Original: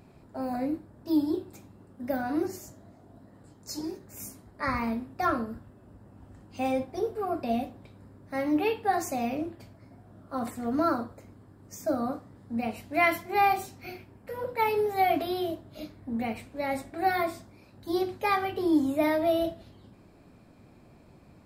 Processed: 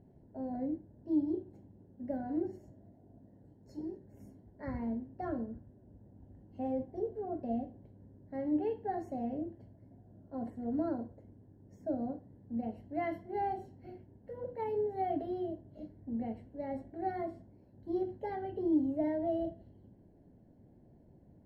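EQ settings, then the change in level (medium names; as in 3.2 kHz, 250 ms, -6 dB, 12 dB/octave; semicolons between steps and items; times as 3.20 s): boxcar filter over 36 samples; -4.5 dB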